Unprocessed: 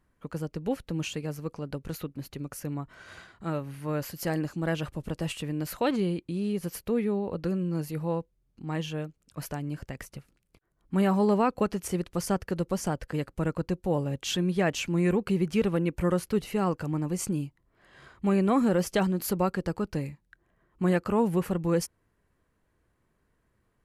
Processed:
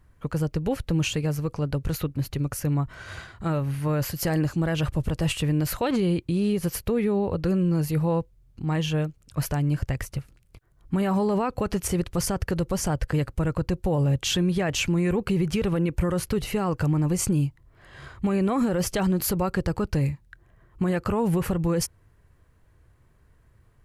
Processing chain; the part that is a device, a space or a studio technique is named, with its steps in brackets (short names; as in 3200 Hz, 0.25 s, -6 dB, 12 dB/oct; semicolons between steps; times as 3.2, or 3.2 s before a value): car stereo with a boomy subwoofer (resonant low shelf 150 Hz +7.5 dB, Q 1.5; limiter -23.5 dBFS, peak gain reduction 9.5 dB); gain +7.5 dB